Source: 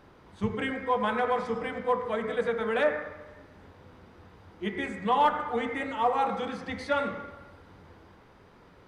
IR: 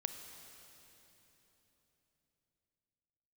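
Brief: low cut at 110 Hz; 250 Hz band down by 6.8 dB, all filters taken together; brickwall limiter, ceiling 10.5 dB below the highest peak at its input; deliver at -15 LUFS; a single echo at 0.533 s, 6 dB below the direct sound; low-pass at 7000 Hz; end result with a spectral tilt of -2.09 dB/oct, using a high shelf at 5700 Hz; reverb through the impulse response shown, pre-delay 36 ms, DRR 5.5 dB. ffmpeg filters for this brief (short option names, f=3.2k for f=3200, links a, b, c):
-filter_complex "[0:a]highpass=110,lowpass=7k,equalizer=f=250:t=o:g=-8,highshelf=f=5.7k:g=5,alimiter=limit=-22.5dB:level=0:latency=1,aecho=1:1:533:0.501,asplit=2[a][b];[1:a]atrim=start_sample=2205,adelay=36[c];[b][c]afir=irnorm=-1:irlink=0,volume=-5dB[d];[a][d]amix=inputs=2:normalize=0,volume=17dB"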